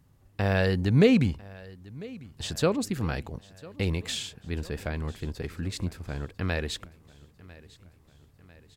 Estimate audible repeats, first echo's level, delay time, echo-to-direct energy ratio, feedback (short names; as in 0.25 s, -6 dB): 3, -21.0 dB, 0.998 s, -19.5 dB, 54%